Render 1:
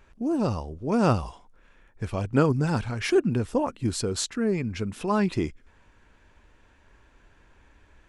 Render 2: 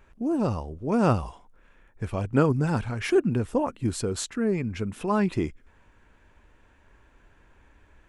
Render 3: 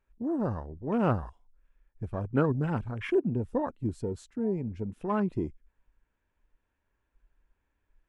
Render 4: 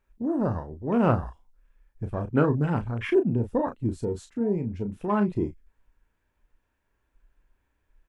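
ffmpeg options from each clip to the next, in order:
ffmpeg -i in.wav -af "equalizer=frequency=4800:width_type=o:width=1.1:gain=-5.5" out.wav
ffmpeg -i in.wav -af "afwtdn=0.02,volume=-4.5dB" out.wav
ffmpeg -i in.wav -filter_complex "[0:a]asplit=2[link_01][link_02];[link_02]adelay=34,volume=-8dB[link_03];[link_01][link_03]amix=inputs=2:normalize=0,volume=3.5dB" out.wav

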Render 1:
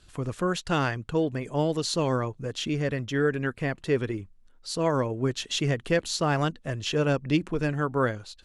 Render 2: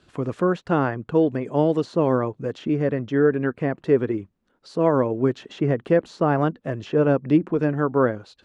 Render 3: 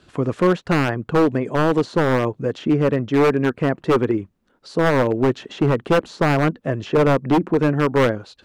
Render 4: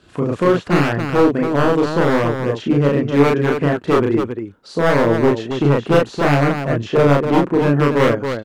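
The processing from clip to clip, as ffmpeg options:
ffmpeg -i in.wav -filter_complex "[0:a]highpass=290,aemphasis=mode=reproduction:type=riaa,acrossover=split=1800[link_01][link_02];[link_02]acompressor=threshold=-50dB:ratio=6[link_03];[link_01][link_03]amix=inputs=2:normalize=0,volume=4.5dB" out.wav
ffmpeg -i in.wav -af "aeval=exprs='0.188*(abs(mod(val(0)/0.188+3,4)-2)-1)':channel_layout=same,volume=5dB" out.wav
ffmpeg -i in.wav -af "aecho=1:1:34.99|277:0.891|0.501" out.wav

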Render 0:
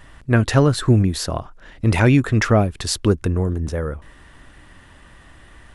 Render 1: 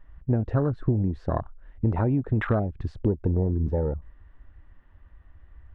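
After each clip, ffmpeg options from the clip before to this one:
ffmpeg -i in.wav -af "acompressor=threshold=-19dB:ratio=12,lowpass=1800,afwtdn=0.0398" out.wav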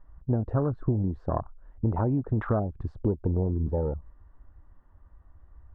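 ffmpeg -i in.wav -af "highshelf=frequency=1600:width_type=q:width=1.5:gain=-10.5,volume=-2.5dB" out.wav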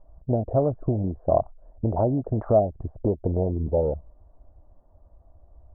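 ffmpeg -i in.wav -af "lowpass=frequency=650:width_type=q:width=4.9" out.wav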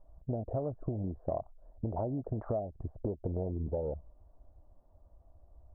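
ffmpeg -i in.wav -af "acompressor=threshold=-25dB:ratio=5,volume=-6dB" out.wav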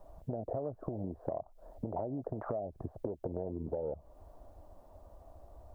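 ffmpeg -i in.wav -filter_complex "[0:a]acrossover=split=85|790[link_01][link_02][link_03];[link_01]acompressor=threshold=-55dB:ratio=4[link_04];[link_02]acompressor=threshold=-35dB:ratio=4[link_05];[link_03]acompressor=threshold=-51dB:ratio=4[link_06];[link_04][link_05][link_06]amix=inputs=3:normalize=0,lowshelf=frequency=250:gain=-10.5,acompressor=threshold=-53dB:ratio=2.5,volume=14.5dB" out.wav

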